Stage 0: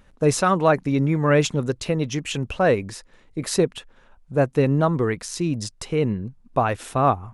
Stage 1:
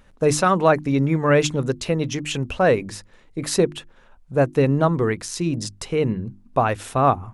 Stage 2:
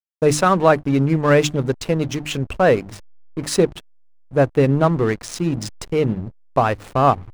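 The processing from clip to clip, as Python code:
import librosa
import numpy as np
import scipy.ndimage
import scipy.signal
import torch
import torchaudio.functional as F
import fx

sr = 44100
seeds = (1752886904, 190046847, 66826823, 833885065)

y1 = fx.hum_notches(x, sr, base_hz=50, count=7)
y1 = y1 * librosa.db_to_amplitude(1.5)
y2 = fx.backlash(y1, sr, play_db=-27.5)
y2 = y2 * librosa.db_to_amplitude(2.5)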